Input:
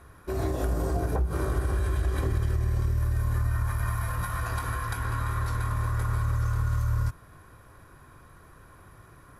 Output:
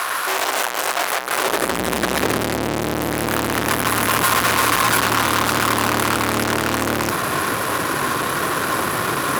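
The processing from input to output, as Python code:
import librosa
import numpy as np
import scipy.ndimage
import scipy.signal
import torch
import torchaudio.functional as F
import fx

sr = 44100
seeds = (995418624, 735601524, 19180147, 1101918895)

y = fx.fuzz(x, sr, gain_db=53.0, gate_db=-58.0)
y = fx.filter_sweep_highpass(y, sr, from_hz=850.0, to_hz=250.0, start_s=1.28, end_s=1.81, q=0.83)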